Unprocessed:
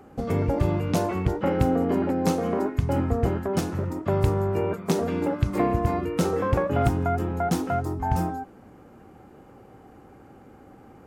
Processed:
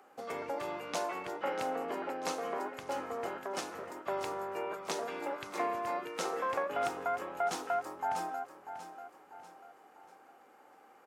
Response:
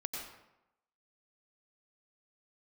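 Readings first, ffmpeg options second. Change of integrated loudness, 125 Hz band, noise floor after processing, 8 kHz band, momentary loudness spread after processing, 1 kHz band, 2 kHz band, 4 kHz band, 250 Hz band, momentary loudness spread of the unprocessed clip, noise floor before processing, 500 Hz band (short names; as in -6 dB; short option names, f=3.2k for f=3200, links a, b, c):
-11.5 dB, -33.0 dB, -60 dBFS, -5.0 dB, 12 LU, -5.5 dB, -4.0 dB, -4.0 dB, -20.0 dB, 4 LU, -50 dBFS, -10.5 dB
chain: -filter_complex "[0:a]acrossover=split=9800[a][b];[b]acompressor=threshold=-57dB:ratio=4:attack=1:release=60[c];[a][c]amix=inputs=2:normalize=0,highpass=700,asplit=2[d][e];[e]aecho=0:1:641|1282|1923|2564:0.266|0.114|0.0492|0.0212[f];[d][f]amix=inputs=2:normalize=0,volume=-4dB"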